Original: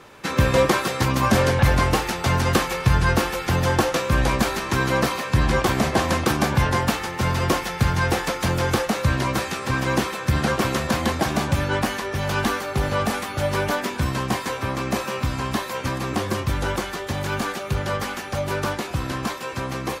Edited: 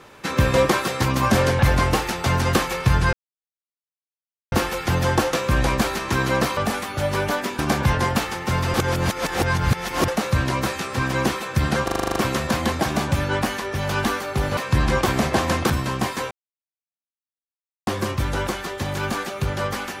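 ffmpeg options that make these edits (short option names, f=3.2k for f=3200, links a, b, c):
-filter_complex "[0:a]asplit=18[a][b][c][d][e][f][g][h][i][j][k][l][m][n][o][p][q][r];[a]atrim=end=3.13,asetpts=PTS-STARTPTS,afade=t=out:st=3.126:d=0.004:c=hsin,apad=pad_dur=1.39[s];[b]atrim=start=3.13:end=5.182,asetpts=PTS-STARTPTS,afade=t=in:d=0.004:c=hsin[t];[c]atrim=start=12.968:end=13.992[u];[d]atrim=start=6.308:end=7.462[v];[e]atrim=start=7.458:end=8.802,asetpts=PTS-STARTPTS,areverse[w];[f]atrim=start=8.798:end=10.602[x];[g]atrim=start=10.558:end=10.602[y];[h]atrim=start=10.558:end=10.602[z];[i]atrim=start=10.558:end=10.602[aa];[j]atrim=start=10.558:end=10.602[ab];[k]atrim=start=10.558:end=10.602[ac];[l]atrim=start=10.558:end=10.602[ad];[m]atrim=start=10.558:end=10.602[ae];[n]atrim=start=10.558:end=12.972[af];[o]atrim=start=5.178:end=6.312[ag];[p]atrim=start=13.988:end=14.6,asetpts=PTS-STARTPTS,afade=t=out:st=0.608:d=0.004:c=hsin[ah];[q]atrim=start=14.6:end=16.16,asetpts=PTS-STARTPTS,volume=0[ai];[r]atrim=start=16.16,asetpts=PTS-STARTPTS,afade=t=in:d=0.004:c=hsin[aj];[s][t]concat=n=2:v=0:a=1[ak];[ak][u]acrossfade=d=0.004:c1=hsin:c2=hsin[al];[al][v]acrossfade=d=0.004:c1=hsin:c2=hsin[am];[am][w]acrossfade=d=0.004:c1=hsin:c2=hsin[an];[an][x]acrossfade=d=0.004:c1=hsin:c2=hsin[ao];[ao][y]acrossfade=d=0.004:c1=hsin:c2=hsin[ap];[ap][z]acrossfade=d=0.004:c1=hsin:c2=hsin[aq];[aq][aa]acrossfade=d=0.004:c1=hsin:c2=hsin[ar];[ar][ab]acrossfade=d=0.004:c1=hsin:c2=hsin[as];[as][ac]acrossfade=d=0.004:c1=hsin:c2=hsin[at];[at][ad]acrossfade=d=0.004:c1=hsin:c2=hsin[au];[au][ae]acrossfade=d=0.004:c1=hsin:c2=hsin[av];[av][af]acrossfade=d=0.004:c1=hsin:c2=hsin[aw];[aw][ag]acrossfade=d=0.004:c1=hsin:c2=hsin[ax];[ah][ai][aj]concat=n=3:v=0:a=1[ay];[ax][ay]acrossfade=d=0.004:c1=hsin:c2=hsin"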